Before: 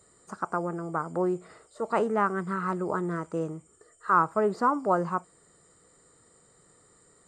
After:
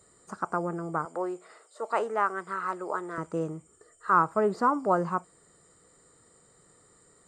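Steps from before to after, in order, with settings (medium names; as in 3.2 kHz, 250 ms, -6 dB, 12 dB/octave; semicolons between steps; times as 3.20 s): 1.05–3.18 s: high-pass 480 Hz 12 dB/octave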